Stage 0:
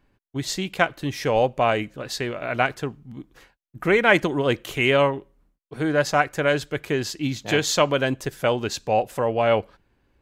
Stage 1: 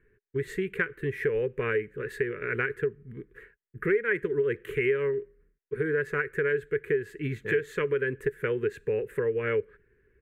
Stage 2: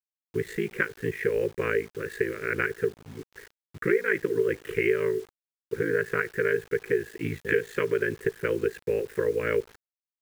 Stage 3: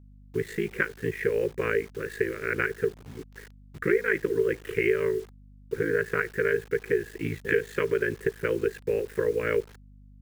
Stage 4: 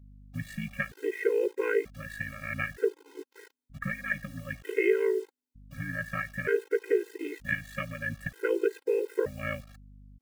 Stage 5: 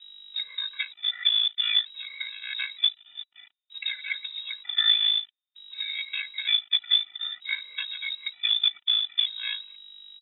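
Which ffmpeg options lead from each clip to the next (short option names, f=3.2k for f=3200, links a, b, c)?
-af "firequalizer=gain_entry='entry(150,0);entry(290,-8);entry(420,15);entry(660,-29);entry(1000,-12);entry(1700,9);entry(3100,-13);entry(5200,-28);entry(8500,-11)':delay=0.05:min_phase=1,acompressor=threshold=-23dB:ratio=4,volume=-2dB"
-af "lowshelf=f=91:g=-5.5,aeval=exprs='val(0)*sin(2*PI*27*n/s)':c=same,acrusher=bits=8:mix=0:aa=0.000001,volume=4.5dB"
-af "aeval=exprs='val(0)+0.00316*(sin(2*PI*50*n/s)+sin(2*PI*2*50*n/s)/2+sin(2*PI*3*50*n/s)/3+sin(2*PI*4*50*n/s)/4+sin(2*PI*5*50*n/s)/5)':c=same"
-af "afftfilt=real='re*gt(sin(2*PI*0.54*pts/sr)*(1-2*mod(floor(b*sr/1024/270),2)),0)':imag='im*gt(sin(2*PI*0.54*pts/sr)*(1-2*mod(floor(b*sr/1024/270),2)),0)':win_size=1024:overlap=0.75"
-af "acrusher=bits=3:mode=log:mix=0:aa=0.000001,lowpass=f=3.3k:t=q:w=0.5098,lowpass=f=3.3k:t=q:w=0.6013,lowpass=f=3.3k:t=q:w=0.9,lowpass=f=3.3k:t=q:w=2.563,afreqshift=-3900,crystalizer=i=6.5:c=0,volume=-8dB"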